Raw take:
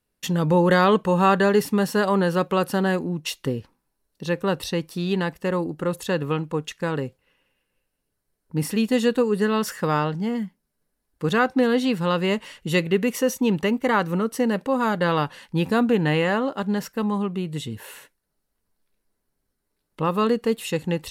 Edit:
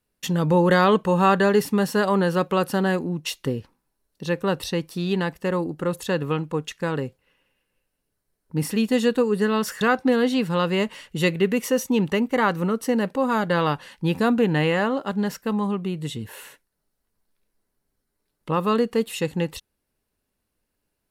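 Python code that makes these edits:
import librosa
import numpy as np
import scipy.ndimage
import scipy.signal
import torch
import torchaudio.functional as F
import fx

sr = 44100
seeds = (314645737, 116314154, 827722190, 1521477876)

y = fx.edit(x, sr, fx.cut(start_s=9.81, length_s=1.51), tone=tone)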